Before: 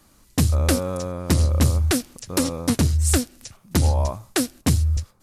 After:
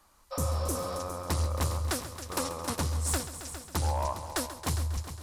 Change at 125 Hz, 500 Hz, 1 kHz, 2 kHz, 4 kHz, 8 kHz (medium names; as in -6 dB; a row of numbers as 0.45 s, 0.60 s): -11.5 dB, -8.0 dB, -2.0 dB, -8.0 dB, -8.5 dB, -8.0 dB